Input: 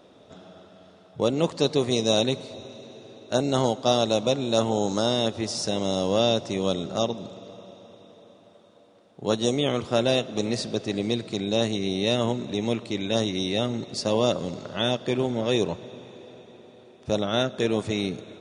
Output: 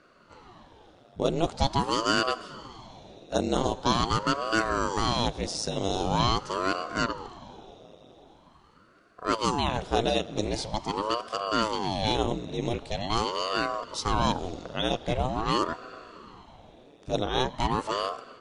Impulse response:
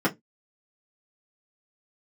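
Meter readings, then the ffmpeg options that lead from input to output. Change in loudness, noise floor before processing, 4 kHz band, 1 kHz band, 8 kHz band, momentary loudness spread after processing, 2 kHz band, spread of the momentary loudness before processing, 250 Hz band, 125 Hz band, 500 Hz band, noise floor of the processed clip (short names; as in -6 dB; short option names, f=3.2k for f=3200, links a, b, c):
-3.0 dB, -54 dBFS, -3.0 dB, +5.0 dB, -3.0 dB, 12 LU, +2.5 dB, 10 LU, -5.0 dB, -2.5 dB, -6.0 dB, -57 dBFS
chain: -af "dynaudnorm=f=160:g=5:m=3.5dB,aeval=exprs='val(0)*sin(2*PI*470*n/s+470*0.9/0.44*sin(2*PI*0.44*n/s))':c=same,volume=-3dB"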